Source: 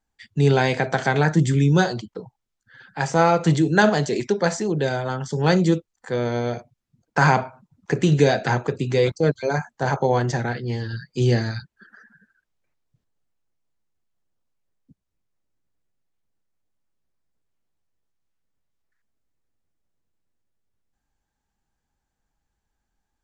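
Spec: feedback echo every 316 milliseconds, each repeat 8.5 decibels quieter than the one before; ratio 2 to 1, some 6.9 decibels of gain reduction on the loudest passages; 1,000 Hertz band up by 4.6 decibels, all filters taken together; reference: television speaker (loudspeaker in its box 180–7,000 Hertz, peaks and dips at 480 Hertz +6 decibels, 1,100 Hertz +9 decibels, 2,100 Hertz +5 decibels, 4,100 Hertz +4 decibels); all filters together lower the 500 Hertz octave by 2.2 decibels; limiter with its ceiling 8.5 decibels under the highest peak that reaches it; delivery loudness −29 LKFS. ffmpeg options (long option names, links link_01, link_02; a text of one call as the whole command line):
ffmpeg -i in.wav -af "equalizer=frequency=500:width_type=o:gain=-8,equalizer=frequency=1000:width_type=o:gain=4.5,acompressor=threshold=-24dB:ratio=2,alimiter=limit=-17dB:level=0:latency=1,highpass=frequency=180:width=0.5412,highpass=frequency=180:width=1.3066,equalizer=frequency=480:width_type=q:width=4:gain=6,equalizer=frequency=1100:width_type=q:width=4:gain=9,equalizer=frequency=2100:width_type=q:width=4:gain=5,equalizer=frequency=4100:width_type=q:width=4:gain=4,lowpass=frequency=7000:width=0.5412,lowpass=frequency=7000:width=1.3066,aecho=1:1:316|632|948|1264:0.376|0.143|0.0543|0.0206,volume=-1dB" out.wav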